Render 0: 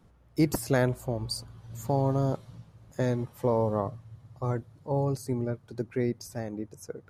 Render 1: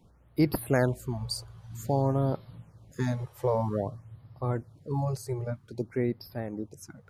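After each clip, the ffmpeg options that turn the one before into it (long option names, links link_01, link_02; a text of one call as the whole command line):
ffmpeg -i in.wav -af "afftfilt=real='re*(1-between(b*sr/1024,220*pow(7800/220,0.5+0.5*sin(2*PI*0.52*pts/sr))/1.41,220*pow(7800/220,0.5+0.5*sin(2*PI*0.52*pts/sr))*1.41))':imag='im*(1-between(b*sr/1024,220*pow(7800/220,0.5+0.5*sin(2*PI*0.52*pts/sr))/1.41,220*pow(7800/220,0.5+0.5*sin(2*PI*0.52*pts/sr))*1.41))':win_size=1024:overlap=0.75" out.wav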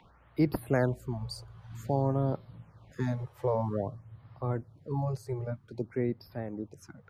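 ffmpeg -i in.wav -filter_complex "[0:a]equalizer=frequency=11000:width=0.31:gain=-9.5,acrossover=split=210|850|4100[link_01][link_02][link_03][link_04];[link_03]acompressor=mode=upward:threshold=-50dB:ratio=2.5[link_05];[link_01][link_02][link_05][link_04]amix=inputs=4:normalize=0,volume=-2dB" out.wav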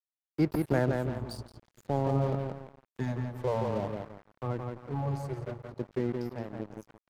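ffmpeg -i in.wav -filter_complex "[0:a]asplit=2[link_01][link_02];[link_02]adelay=171,lowpass=frequency=2600:poles=1,volume=-3.5dB,asplit=2[link_03][link_04];[link_04]adelay=171,lowpass=frequency=2600:poles=1,volume=0.43,asplit=2[link_05][link_06];[link_06]adelay=171,lowpass=frequency=2600:poles=1,volume=0.43,asplit=2[link_07][link_08];[link_08]adelay=171,lowpass=frequency=2600:poles=1,volume=0.43,asplit=2[link_09][link_10];[link_10]adelay=171,lowpass=frequency=2600:poles=1,volume=0.43[link_11];[link_03][link_05][link_07][link_09][link_11]amix=inputs=5:normalize=0[link_12];[link_01][link_12]amix=inputs=2:normalize=0,aeval=exprs='sgn(val(0))*max(abs(val(0))-0.00891,0)':channel_layout=same" out.wav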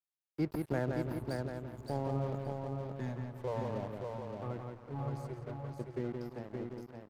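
ffmpeg -i in.wav -af "aecho=1:1:569|1138|1707:0.596|0.107|0.0193,volume=-7dB" out.wav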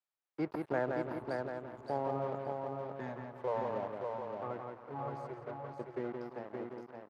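ffmpeg -i in.wav -af "bandpass=frequency=970:width_type=q:width=0.69:csg=0,volume=5dB" out.wav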